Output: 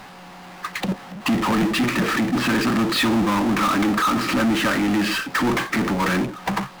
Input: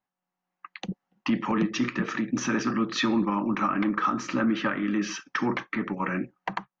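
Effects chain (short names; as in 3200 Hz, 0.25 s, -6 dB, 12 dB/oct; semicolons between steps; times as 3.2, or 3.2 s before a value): downsampling 11025 Hz; power-law curve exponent 0.35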